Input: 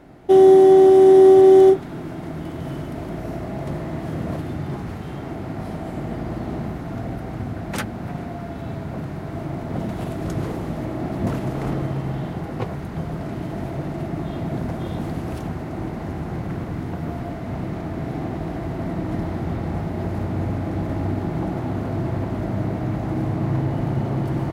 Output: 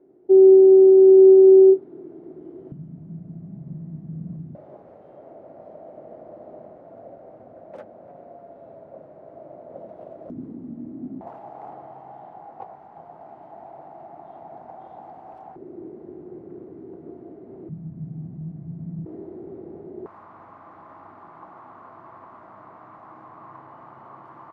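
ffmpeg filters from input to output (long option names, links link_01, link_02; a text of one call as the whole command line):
ffmpeg -i in.wav -af "asetnsamples=nb_out_samples=441:pad=0,asendcmd='2.72 bandpass f 170;4.55 bandpass f 570;10.3 bandpass f 250;11.21 bandpass f 790;15.56 bandpass f 380;17.69 bandpass f 160;19.06 bandpass f 390;20.06 bandpass f 1100',bandpass=frequency=380:width_type=q:width=6.1:csg=0" out.wav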